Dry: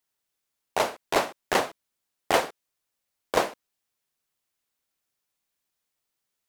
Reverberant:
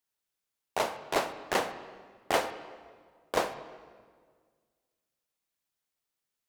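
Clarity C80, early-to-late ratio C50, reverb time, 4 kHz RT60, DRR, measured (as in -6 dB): 12.5 dB, 11.0 dB, 1.7 s, 1.3 s, 10.0 dB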